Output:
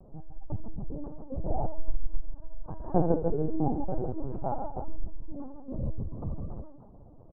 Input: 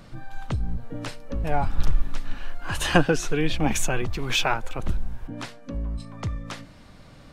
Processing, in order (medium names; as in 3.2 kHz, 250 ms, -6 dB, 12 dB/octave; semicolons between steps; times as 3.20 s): steep low-pass 880 Hz 36 dB/octave; on a send: multi-tap echo 72/146/162/305 ms -7.5/-7/-10/-11 dB; on the sum: LPC vocoder at 8 kHz pitch kept; trim -5 dB